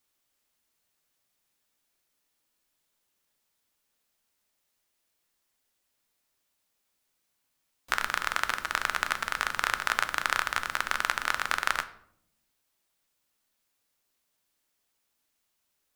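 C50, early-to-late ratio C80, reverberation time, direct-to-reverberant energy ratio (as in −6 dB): 15.0 dB, 18.0 dB, 0.70 s, 10.0 dB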